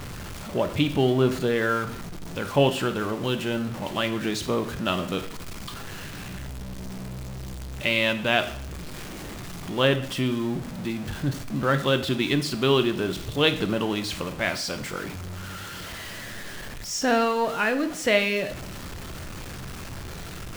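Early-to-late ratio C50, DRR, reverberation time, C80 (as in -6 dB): 13.0 dB, 8.5 dB, 0.65 s, 16.5 dB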